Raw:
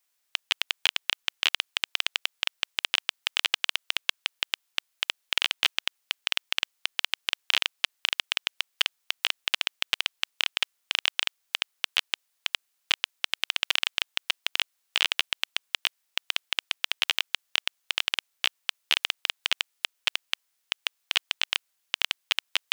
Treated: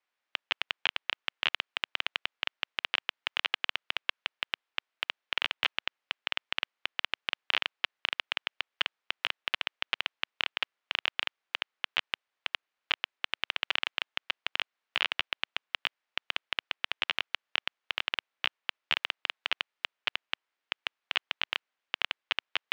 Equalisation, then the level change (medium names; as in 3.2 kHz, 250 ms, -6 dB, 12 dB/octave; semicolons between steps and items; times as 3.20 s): band-pass 200–2400 Hz; 0.0 dB